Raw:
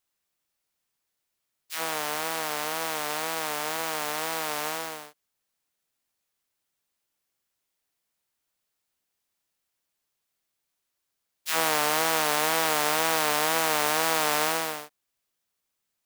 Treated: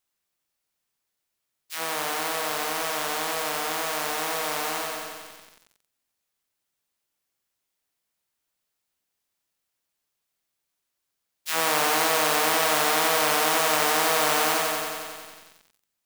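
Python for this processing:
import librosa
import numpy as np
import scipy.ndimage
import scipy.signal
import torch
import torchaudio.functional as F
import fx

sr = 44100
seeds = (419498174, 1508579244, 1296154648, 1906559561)

y = fx.echo_crushed(x, sr, ms=91, feedback_pct=80, bits=8, wet_db=-4.5)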